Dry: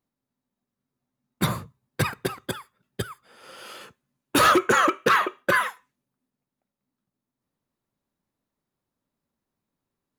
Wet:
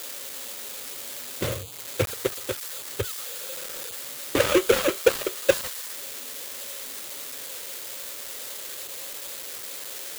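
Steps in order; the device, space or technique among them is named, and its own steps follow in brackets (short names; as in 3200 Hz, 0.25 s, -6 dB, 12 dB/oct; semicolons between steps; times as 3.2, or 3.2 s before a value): EQ curve 100 Hz 0 dB, 170 Hz -18 dB, 540 Hz +6 dB, 840 Hz -22 dB, 2600 Hz +3 dB, 4400 Hz -15 dB; budget class-D amplifier (switching dead time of 0.27 ms; switching spikes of -20 dBFS); gain +3.5 dB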